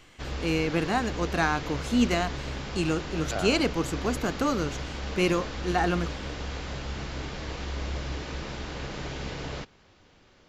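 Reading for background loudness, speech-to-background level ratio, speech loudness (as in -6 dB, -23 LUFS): -35.5 LUFS, 7.5 dB, -28.0 LUFS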